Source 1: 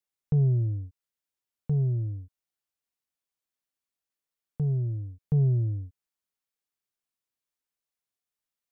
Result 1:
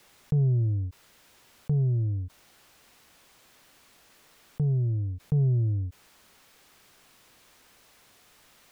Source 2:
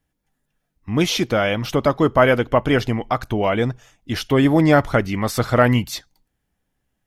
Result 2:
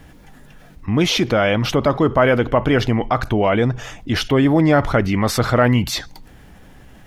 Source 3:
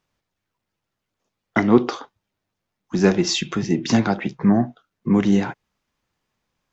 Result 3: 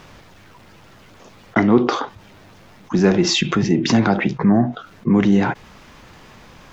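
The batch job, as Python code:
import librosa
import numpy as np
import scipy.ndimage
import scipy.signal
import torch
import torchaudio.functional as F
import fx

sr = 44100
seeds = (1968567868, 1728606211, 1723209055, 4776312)

y = fx.high_shelf(x, sr, hz=5600.0, db=-10.5)
y = fx.env_flatten(y, sr, amount_pct=50)
y = F.gain(torch.from_numpy(y), -1.0).numpy()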